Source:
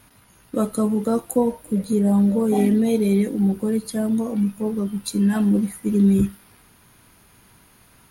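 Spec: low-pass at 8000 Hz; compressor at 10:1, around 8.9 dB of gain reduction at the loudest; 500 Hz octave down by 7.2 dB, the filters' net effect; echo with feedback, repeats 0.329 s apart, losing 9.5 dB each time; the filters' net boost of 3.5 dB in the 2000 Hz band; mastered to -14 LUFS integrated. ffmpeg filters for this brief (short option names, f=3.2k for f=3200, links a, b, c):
-af "lowpass=8k,equalizer=f=500:t=o:g=-9,equalizer=f=2k:t=o:g=5,acompressor=threshold=-24dB:ratio=10,aecho=1:1:329|658|987|1316:0.335|0.111|0.0365|0.012,volume=14dB"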